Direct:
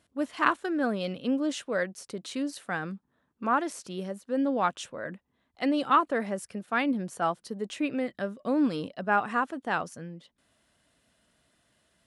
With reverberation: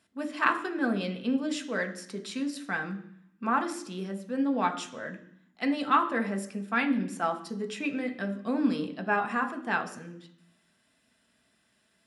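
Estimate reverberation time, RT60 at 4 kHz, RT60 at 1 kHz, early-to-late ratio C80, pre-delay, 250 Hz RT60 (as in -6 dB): 0.60 s, 0.80 s, 0.65 s, 15.0 dB, 3 ms, 0.95 s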